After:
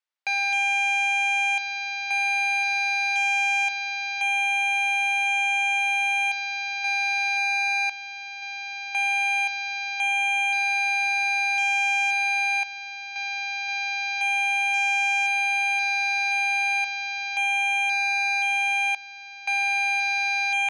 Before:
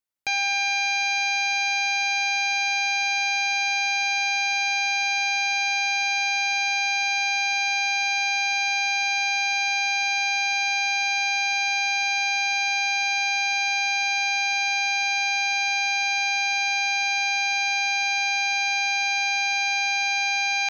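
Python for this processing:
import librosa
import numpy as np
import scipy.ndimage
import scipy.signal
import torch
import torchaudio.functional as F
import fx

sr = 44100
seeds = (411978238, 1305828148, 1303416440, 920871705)

y = fx.tremolo_random(x, sr, seeds[0], hz=1.9, depth_pct=95)
y = fx.cheby_harmonics(y, sr, harmonics=(5,), levels_db=(-8,), full_scale_db=-16.0)
y = fx.bandpass_edges(y, sr, low_hz=690.0, high_hz=4500.0)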